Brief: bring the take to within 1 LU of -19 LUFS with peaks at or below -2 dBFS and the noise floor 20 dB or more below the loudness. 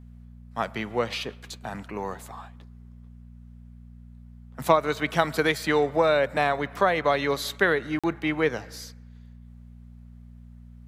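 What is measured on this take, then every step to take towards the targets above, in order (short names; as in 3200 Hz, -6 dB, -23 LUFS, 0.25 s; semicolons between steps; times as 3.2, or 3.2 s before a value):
dropouts 1; longest dropout 46 ms; hum 60 Hz; harmonics up to 240 Hz; hum level -44 dBFS; loudness -25.5 LUFS; peak -4.0 dBFS; loudness target -19.0 LUFS
-> interpolate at 7.99, 46 ms; de-hum 60 Hz, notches 4; gain +6.5 dB; limiter -2 dBFS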